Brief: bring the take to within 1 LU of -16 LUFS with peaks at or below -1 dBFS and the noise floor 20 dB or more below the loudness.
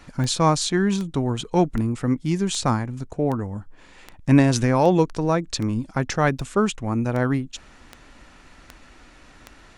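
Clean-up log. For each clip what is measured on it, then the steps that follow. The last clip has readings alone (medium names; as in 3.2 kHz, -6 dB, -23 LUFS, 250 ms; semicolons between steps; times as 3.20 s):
clicks found 13; loudness -22.5 LUFS; peak level -3.0 dBFS; loudness target -16.0 LUFS
-> de-click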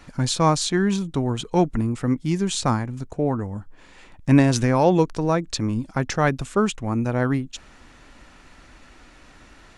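clicks found 0; loudness -22.5 LUFS; peak level -3.0 dBFS; loudness target -16.0 LUFS
-> trim +6.5 dB; peak limiter -1 dBFS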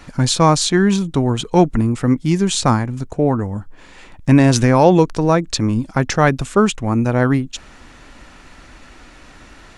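loudness -16.0 LUFS; peak level -1.0 dBFS; noise floor -43 dBFS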